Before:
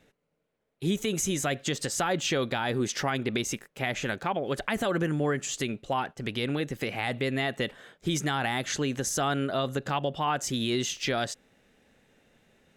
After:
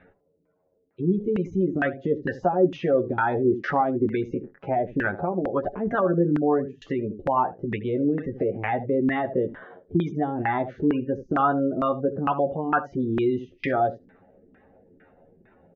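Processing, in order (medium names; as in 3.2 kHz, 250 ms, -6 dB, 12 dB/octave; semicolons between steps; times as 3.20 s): one-sided clip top -19.5 dBFS; on a send at -22 dB: reverberation RT60 0.25 s, pre-delay 3 ms; on the sum: tempo 0.81×; steep low-pass 6.6 kHz 48 dB/octave; spectral gate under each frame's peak -20 dB strong; early reflections 11 ms -5 dB, 78 ms -14 dB; de-esser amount 70%; LFO low-pass saw down 2.2 Hz 270–1700 Hz; in parallel at -2 dB: compression, threshold -32 dBFS, peak gain reduction 16 dB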